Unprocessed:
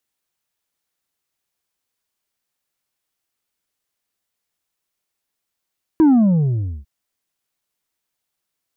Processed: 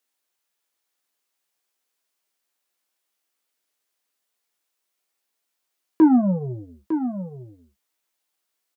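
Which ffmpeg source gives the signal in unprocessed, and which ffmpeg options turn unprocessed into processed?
-f lavfi -i "aevalsrc='0.355*clip((0.85-t)/0.82,0,1)*tanh(1.58*sin(2*PI*330*0.85/log(65/330)*(exp(log(65/330)*t/0.85)-1)))/tanh(1.58)':duration=0.85:sample_rate=44100"
-filter_complex "[0:a]highpass=280,asplit=2[link_01][link_02];[link_02]adelay=16,volume=-7.5dB[link_03];[link_01][link_03]amix=inputs=2:normalize=0,asplit=2[link_04][link_05];[link_05]aecho=0:1:904:0.335[link_06];[link_04][link_06]amix=inputs=2:normalize=0"

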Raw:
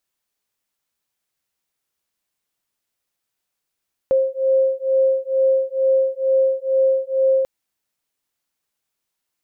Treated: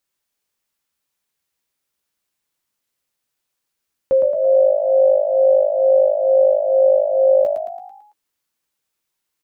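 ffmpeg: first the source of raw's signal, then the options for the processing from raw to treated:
-f lavfi -i "aevalsrc='0.126*(sin(2*PI*530*t)+sin(2*PI*532.2*t))':duration=3.34:sample_rate=44100"
-filter_complex "[0:a]bandreject=frequency=680:width=12,asplit=2[link_01][link_02];[link_02]adelay=13,volume=-8dB[link_03];[link_01][link_03]amix=inputs=2:normalize=0,asplit=7[link_04][link_05][link_06][link_07][link_08][link_09][link_10];[link_05]adelay=111,afreqshift=51,volume=-6dB[link_11];[link_06]adelay=222,afreqshift=102,volume=-11.8dB[link_12];[link_07]adelay=333,afreqshift=153,volume=-17.7dB[link_13];[link_08]adelay=444,afreqshift=204,volume=-23.5dB[link_14];[link_09]adelay=555,afreqshift=255,volume=-29.4dB[link_15];[link_10]adelay=666,afreqshift=306,volume=-35.2dB[link_16];[link_04][link_11][link_12][link_13][link_14][link_15][link_16]amix=inputs=7:normalize=0"

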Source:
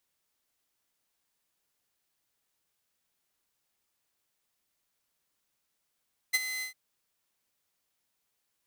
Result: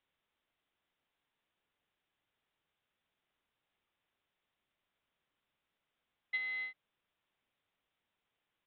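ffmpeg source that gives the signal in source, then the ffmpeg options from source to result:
-f lavfi -i "aevalsrc='0.119*(2*mod(2040*t,1)-1)':duration=0.403:sample_rate=44100,afade=type=in:duration=0.018,afade=type=out:start_time=0.018:duration=0.031:silence=0.251,afade=type=out:start_time=0.29:duration=0.113"
-filter_complex "[0:a]acrossover=split=2900[link_01][link_02];[link_01]asoftclip=type=tanh:threshold=-35.5dB[link_03];[link_03][link_02]amix=inputs=2:normalize=0,aresample=8000,aresample=44100"

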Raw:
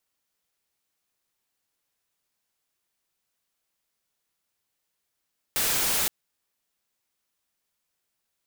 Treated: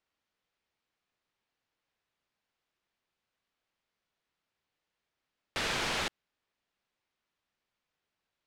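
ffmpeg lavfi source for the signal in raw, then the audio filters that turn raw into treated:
-f lavfi -i "anoisesrc=color=white:amplitude=0.0974:duration=0.52:sample_rate=44100:seed=1"
-af "lowpass=3500"

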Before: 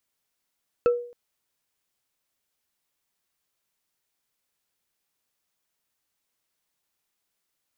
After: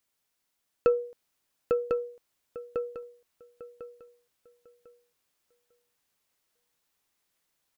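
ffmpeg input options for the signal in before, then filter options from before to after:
-f lavfi -i "aevalsrc='0.2*pow(10,-3*t/0.49)*sin(2*PI*482*t)+0.0596*pow(10,-3*t/0.145)*sin(2*PI*1328.9*t)+0.0178*pow(10,-3*t/0.065)*sin(2*PI*2604.7*t)+0.00531*pow(10,-3*t/0.035)*sin(2*PI*4305.7*t)+0.00158*pow(10,-3*t/0.022)*sin(2*PI*6429.9*t)':duration=0.27:sample_rate=44100"
-filter_complex "[0:a]asplit=2[link_01][link_02];[link_02]adelay=849,lowpass=frequency=3400:poles=1,volume=-3.5dB,asplit=2[link_03][link_04];[link_04]adelay=849,lowpass=frequency=3400:poles=1,volume=0.19,asplit=2[link_05][link_06];[link_06]adelay=849,lowpass=frequency=3400:poles=1,volume=0.19[link_07];[link_03][link_05][link_07]amix=inputs=3:normalize=0[link_08];[link_01][link_08]amix=inputs=2:normalize=0,aeval=exprs='0.251*(cos(1*acos(clip(val(0)/0.251,-1,1)))-cos(1*PI/2))+0.00501*(cos(2*acos(clip(val(0)/0.251,-1,1)))-cos(2*PI/2))':channel_layout=same,asplit=2[link_09][link_10];[link_10]aecho=0:1:1049|2098|3147:0.562|0.135|0.0324[link_11];[link_09][link_11]amix=inputs=2:normalize=0"

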